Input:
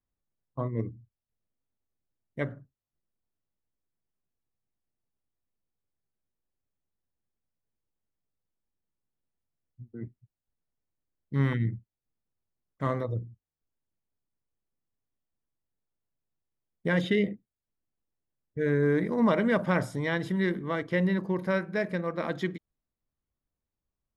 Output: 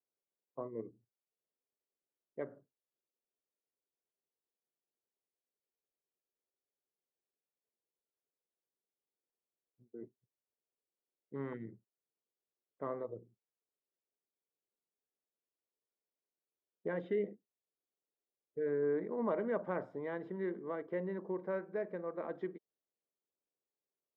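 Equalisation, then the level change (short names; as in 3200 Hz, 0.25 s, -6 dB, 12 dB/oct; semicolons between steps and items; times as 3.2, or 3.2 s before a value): bell 310 Hz -5 dB 0.67 oct; dynamic EQ 480 Hz, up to -7 dB, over -40 dBFS, Q 1.1; ladder band-pass 470 Hz, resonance 45%; +8.0 dB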